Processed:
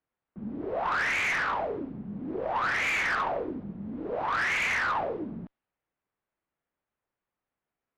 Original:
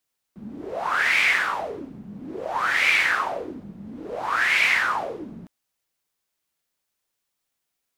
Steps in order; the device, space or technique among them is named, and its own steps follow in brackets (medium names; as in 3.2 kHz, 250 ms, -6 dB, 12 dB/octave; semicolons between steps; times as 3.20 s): distance through air 230 m; tube preamp driven hard (valve stage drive 24 dB, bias 0.25; treble shelf 3.5 kHz -8 dB); level-controlled noise filter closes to 2.2 kHz; trim +2 dB